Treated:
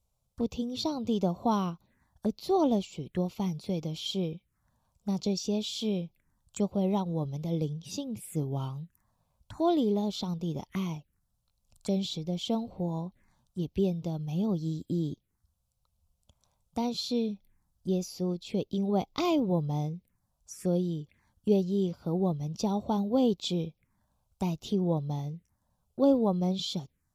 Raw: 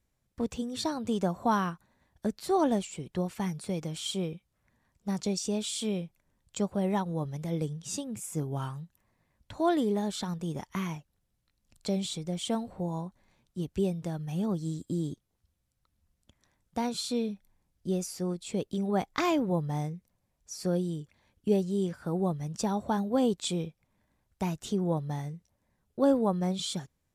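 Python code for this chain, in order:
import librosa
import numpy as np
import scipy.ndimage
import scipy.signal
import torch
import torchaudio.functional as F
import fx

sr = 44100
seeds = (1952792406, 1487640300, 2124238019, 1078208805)

y = fx.env_phaser(x, sr, low_hz=300.0, high_hz=1700.0, full_db=-33.5)
y = y * 10.0 ** (1.5 / 20.0)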